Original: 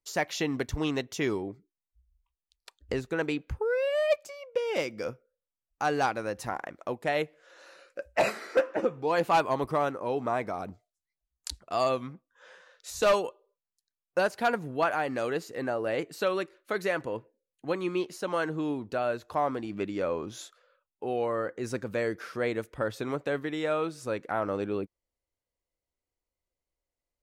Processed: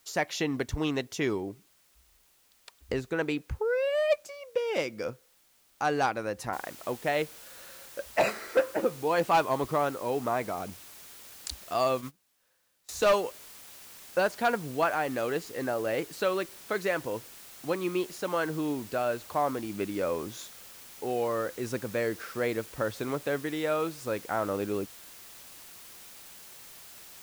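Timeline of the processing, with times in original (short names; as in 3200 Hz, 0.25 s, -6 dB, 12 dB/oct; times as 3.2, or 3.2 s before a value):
6.53 noise floor step -65 dB -49 dB
11.74–12.89 gate -39 dBFS, range -24 dB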